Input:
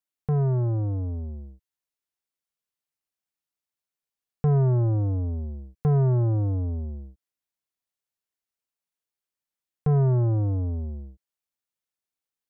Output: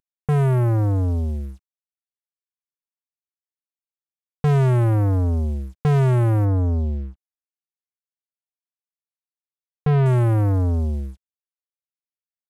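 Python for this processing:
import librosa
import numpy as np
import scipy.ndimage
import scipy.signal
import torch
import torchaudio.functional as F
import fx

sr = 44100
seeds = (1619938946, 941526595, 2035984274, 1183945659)

y = fx.cvsd(x, sr, bps=64000)
y = fx.lowpass(y, sr, hz=1100.0, slope=6, at=(6.45, 10.06))
y = fx.leveller(y, sr, passes=2)
y = F.gain(torch.from_numpy(y), 3.0).numpy()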